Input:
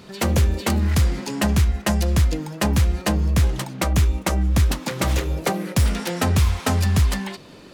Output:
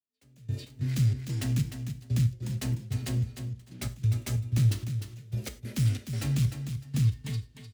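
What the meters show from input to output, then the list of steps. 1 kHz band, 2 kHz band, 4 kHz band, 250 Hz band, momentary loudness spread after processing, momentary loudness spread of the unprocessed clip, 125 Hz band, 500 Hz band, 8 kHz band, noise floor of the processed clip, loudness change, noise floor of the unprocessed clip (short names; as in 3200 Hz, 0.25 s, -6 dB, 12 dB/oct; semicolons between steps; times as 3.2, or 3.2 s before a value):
-24.5 dB, -17.5 dB, -13.5 dB, -11.5 dB, 11 LU, 4 LU, -6.0 dB, -20.0 dB, -13.0 dB, -57 dBFS, -9.0 dB, -44 dBFS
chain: tracing distortion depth 0.07 ms; gate -33 dBFS, range -19 dB; low shelf 460 Hz -8.5 dB; AGC gain up to 11.5 dB; step gate "...x.xx.xx" 93 bpm -24 dB; in parallel at -10.5 dB: sine folder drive 10 dB, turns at -1.5 dBFS; on the sum: frequency shift +52 Hz; passive tone stack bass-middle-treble 10-0-1; on a send: feedback echo 0.303 s, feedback 16%, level -8.5 dB; on the sum: non-linear reverb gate 0.13 s falling, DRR 8.5 dB; gain -3 dB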